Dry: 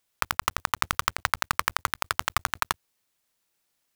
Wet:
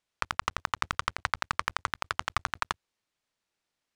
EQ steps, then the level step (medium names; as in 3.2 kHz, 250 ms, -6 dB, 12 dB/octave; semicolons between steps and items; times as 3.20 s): distance through air 73 m; -3.5 dB